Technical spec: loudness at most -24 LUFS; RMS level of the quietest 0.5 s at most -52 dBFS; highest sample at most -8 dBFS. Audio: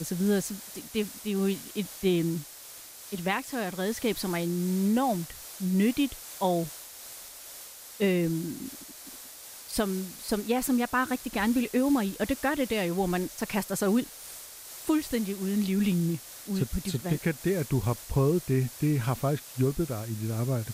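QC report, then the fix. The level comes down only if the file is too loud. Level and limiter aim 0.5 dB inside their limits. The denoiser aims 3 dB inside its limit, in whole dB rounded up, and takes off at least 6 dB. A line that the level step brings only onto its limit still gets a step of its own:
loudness -29.0 LUFS: OK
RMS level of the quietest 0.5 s -46 dBFS: fail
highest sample -14.5 dBFS: OK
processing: denoiser 9 dB, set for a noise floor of -46 dBFS

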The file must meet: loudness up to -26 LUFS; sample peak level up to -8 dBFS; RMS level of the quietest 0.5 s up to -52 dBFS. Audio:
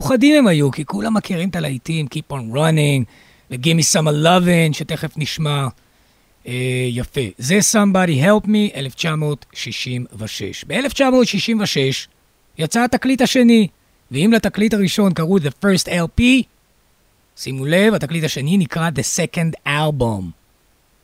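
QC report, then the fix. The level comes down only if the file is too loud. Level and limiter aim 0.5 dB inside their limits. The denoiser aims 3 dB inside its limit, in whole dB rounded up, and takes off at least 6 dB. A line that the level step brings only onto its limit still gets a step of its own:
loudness -17.0 LUFS: fail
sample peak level -2.5 dBFS: fail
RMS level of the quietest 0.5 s -57 dBFS: OK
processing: gain -9.5 dB

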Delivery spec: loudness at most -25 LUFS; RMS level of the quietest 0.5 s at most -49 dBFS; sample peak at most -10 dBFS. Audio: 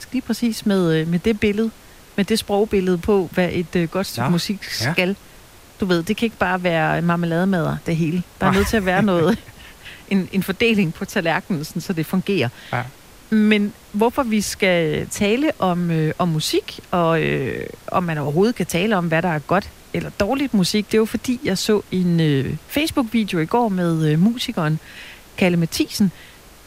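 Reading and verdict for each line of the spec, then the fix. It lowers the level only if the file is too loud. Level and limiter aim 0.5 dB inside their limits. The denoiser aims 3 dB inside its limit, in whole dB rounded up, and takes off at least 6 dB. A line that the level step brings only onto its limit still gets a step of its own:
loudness -20.0 LUFS: fail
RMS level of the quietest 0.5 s -45 dBFS: fail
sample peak -4.0 dBFS: fail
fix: gain -5.5 dB; limiter -10.5 dBFS

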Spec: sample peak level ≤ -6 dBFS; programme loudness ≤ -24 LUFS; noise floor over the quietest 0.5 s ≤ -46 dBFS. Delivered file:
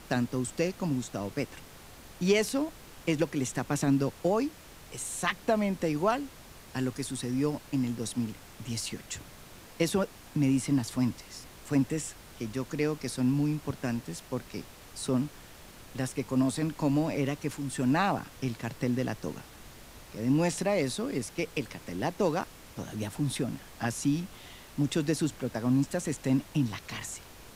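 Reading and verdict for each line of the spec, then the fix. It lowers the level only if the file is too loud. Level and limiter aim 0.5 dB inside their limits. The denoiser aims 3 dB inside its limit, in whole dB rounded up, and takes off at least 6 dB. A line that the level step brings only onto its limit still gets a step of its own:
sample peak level -12.5 dBFS: OK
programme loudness -31.0 LUFS: OK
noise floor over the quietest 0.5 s -50 dBFS: OK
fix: none

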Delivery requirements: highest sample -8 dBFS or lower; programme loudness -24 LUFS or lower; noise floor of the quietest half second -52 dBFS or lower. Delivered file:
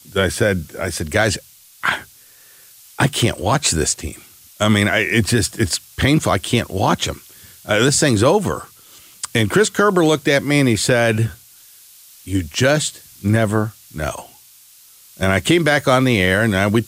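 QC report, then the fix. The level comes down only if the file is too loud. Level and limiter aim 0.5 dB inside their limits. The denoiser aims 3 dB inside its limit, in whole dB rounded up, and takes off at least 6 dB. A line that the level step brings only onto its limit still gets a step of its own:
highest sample -4.0 dBFS: fail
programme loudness -17.5 LUFS: fail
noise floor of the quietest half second -47 dBFS: fail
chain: gain -7 dB

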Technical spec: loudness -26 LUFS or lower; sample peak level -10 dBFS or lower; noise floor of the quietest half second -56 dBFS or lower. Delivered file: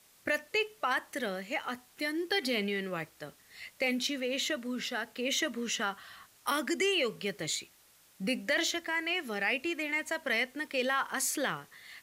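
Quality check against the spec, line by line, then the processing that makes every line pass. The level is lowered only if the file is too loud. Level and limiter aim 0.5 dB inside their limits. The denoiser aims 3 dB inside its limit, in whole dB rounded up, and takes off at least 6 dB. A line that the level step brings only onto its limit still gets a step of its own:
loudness -32.5 LUFS: OK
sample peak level -17.5 dBFS: OK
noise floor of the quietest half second -63 dBFS: OK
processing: none

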